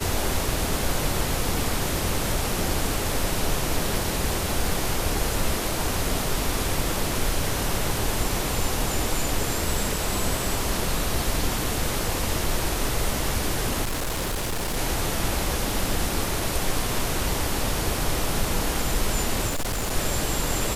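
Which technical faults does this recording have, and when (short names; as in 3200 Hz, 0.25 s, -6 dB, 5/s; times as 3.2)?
13.83–14.77 clipped -23.5 dBFS
19.47–19.92 clipped -23 dBFS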